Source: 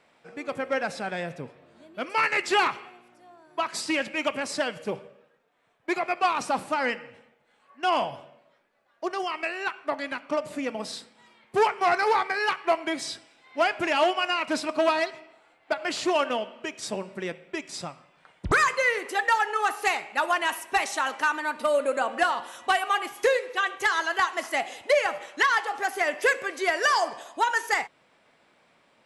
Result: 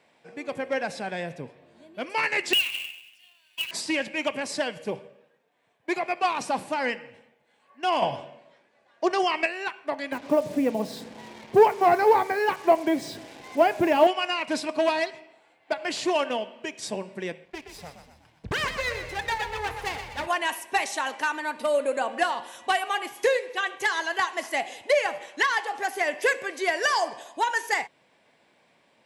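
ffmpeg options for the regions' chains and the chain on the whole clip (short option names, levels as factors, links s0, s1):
-filter_complex "[0:a]asettb=1/sr,asplit=3[s0][s1][s2];[s0]atrim=end=2.534[s3];[s1]atrim=start=2.53:end=3.71,asetpts=PTS-STARTPTS,afade=t=in:d=0.004:c=qsin,afade=t=out:st=1.176:d=0.004:c=qsin,acompressor=threshold=0.0355:ratio=12:attack=3.2:release=140:knee=1:detection=peak,highpass=f=2800:t=q:w=15,acrusher=bits=2:mode=log:mix=0:aa=0.000001[s4];[s2]atrim=start=3.706[s5];[s3][s4]acrossfade=d=0.004:c1=hsin:c2=qsin[s6];[s6][s5]acrossfade=d=0.004:c1=qsin:c2=hsin,asettb=1/sr,asplit=3[s7][s8][s9];[s7]atrim=end=8.024[s10];[s8]atrim=start=8.02:end=9.46,asetpts=PTS-STARTPTS,afade=t=in:d=0.004:c=qsin,afade=t=out:st=1.436:d=0.004:c=qsin,lowpass=f=9100:w=0.5412,lowpass=f=9100:w=1.3066,acontrast=78[s11];[s9]atrim=start=9.456[s12];[s10][s11]acrossfade=d=0.004:c1=hsin:c2=qsin[s13];[s13][s12]acrossfade=d=0.004:c1=qsin:c2=hsin,asettb=1/sr,asplit=3[s14][s15][s16];[s14]atrim=end=10.124[s17];[s15]atrim=start=10.12:end=14.07,asetpts=PTS-STARTPTS,afade=t=in:d=0.004:c=qsin,afade=t=out:st=3.946:d=0.004:c=qsin,tiltshelf=f=1400:g=8.5,acompressor=mode=upward:threshold=0.0282:ratio=2.5:attack=3.2:release=140:knee=2.83:detection=peak,acrusher=bits=6:mix=0:aa=0.5[s18];[s16]atrim=start=14.066[s19];[s17][s18]acrossfade=d=0.004:c1=hsin:c2=qsin[s20];[s20][s19]acrossfade=d=0.004:c1=qsin:c2=hsin,asettb=1/sr,asplit=3[s21][s22][s23];[s21]atrim=end=17.454[s24];[s22]atrim=start=17.45:end=20.27,asetpts=PTS-STARTPTS,afade=t=in:d=0.004:c=qsin,afade=t=out:st=2.816:d=0.004:c=qsin,lowpass=f=3800:p=1,aeval=exprs='max(val(0),0)':c=same,asplit=7[s25][s26][s27][s28][s29][s30][s31];[s26]adelay=123,afreqshift=38,volume=0.376[s32];[s27]adelay=246,afreqshift=76,volume=0.188[s33];[s28]adelay=369,afreqshift=114,volume=0.0944[s34];[s29]adelay=492,afreqshift=152,volume=0.0468[s35];[s30]adelay=615,afreqshift=190,volume=0.0234[s36];[s31]adelay=738,afreqshift=228,volume=0.0117[s37];[s25][s32][s33][s34][s35][s36][s37]amix=inputs=7:normalize=0,atrim=end_sample=124362[s38];[s23]atrim=start=20.266[s39];[s24][s38]acrossfade=d=0.004:c1=hsin:c2=qsin[s40];[s40][s39]acrossfade=d=0.004:c1=qsin:c2=hsin,highpass=63,equalizer=f=1300:t=o:w=0.23:g=-10.5"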